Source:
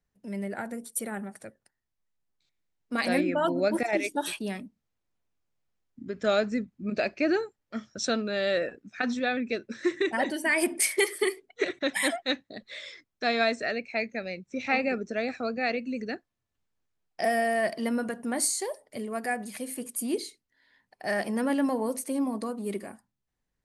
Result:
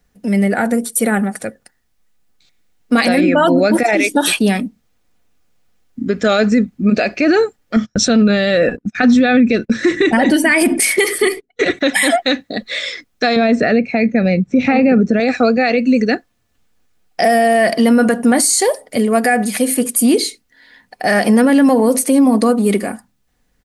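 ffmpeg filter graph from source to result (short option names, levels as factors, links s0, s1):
-filter_complex "[0:a]asettb=1/sr,asplit=3[s0][s1][s2];[s0]atrim=end=7.764[s3];[s1]atrim=start=7.76:end=11.77,asetpts=PTS-STARTPTS,afade=t=in:d=0.004:c=qsin,afade=t=out:st=4.006:d=0.004:c=qsin,agate=range=0.0631:threshold=0.00355:ratio=16:release=100:detection=peak,bass=f=250:g=10,treble=f=4000:g=-2[s4];[s2]atrim=start=11.766[s5];[s3][s4]acrossfade=d=0.004:c1=hsin:c2=qsin[s6];[s6][s5]acrossfade=d=0.004:c1=qsin:c2=hsin,asettb=1/sr,asplit=3[s7][s8][s9];[s7]atrim=end=13.364[s10];[s8]atrim=start=13.36:end=15.2,asetpts=PTS-STARTPTS,afade=t=in:d=0.004:c=qsin,afade=t=out:st=1.836:d=0.004:c=qsin,lowpass=f=2000:p=1,equalizer=f=140:w=0.65:g=12[s11];[s9]atrim=start=15.196[s12];[s10][s11]acrossfade=d=0.004:c1=hsin:c2=qsin[s13];[s13][s12]acrossfade=d=0.004:c1=qsin:c2=hsin,bandreject=f=990:w=13,aecho=1:1:4.1:0.31,alimiter=level_in=13.3:limit=0.891:release=50:level=0:latency=1,volume=0.668"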